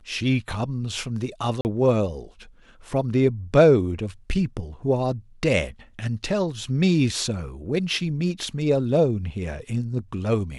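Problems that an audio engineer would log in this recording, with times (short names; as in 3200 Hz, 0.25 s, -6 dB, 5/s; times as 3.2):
1.61–1.65 gap 39 ms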